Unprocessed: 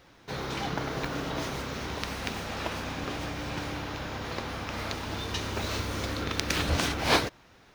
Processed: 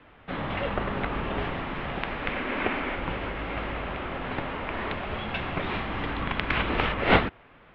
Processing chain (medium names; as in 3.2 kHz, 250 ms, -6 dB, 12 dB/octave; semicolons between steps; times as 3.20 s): mistuned SSB -240 Hz 230–3200 Hz; 2.29–2.96 s: ten-band graphic EQ 125 Hz -10 dB, 250 Hz +7 dB, 2 kHz +5 dB; trim +5 dB